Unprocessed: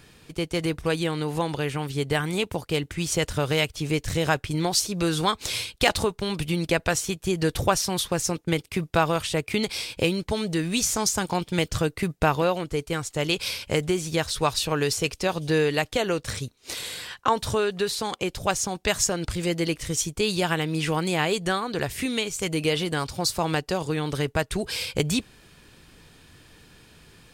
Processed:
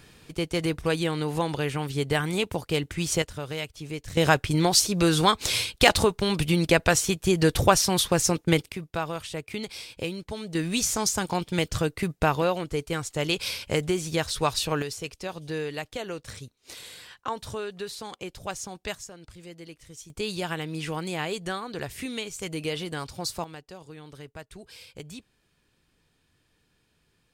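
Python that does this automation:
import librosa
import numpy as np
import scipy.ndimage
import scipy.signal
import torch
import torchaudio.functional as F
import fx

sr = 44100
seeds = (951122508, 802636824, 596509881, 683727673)

y = fx.gain(x, sr, db=fx.steps((0.0, -0.5), (3.22, -9.5), (4.17, 3.0), (8.72, -8.5), (10.55, -1.5), (14.82, -9.5), (18.95, -18.5), (20.1, -6.5), (23.44, -17.5)))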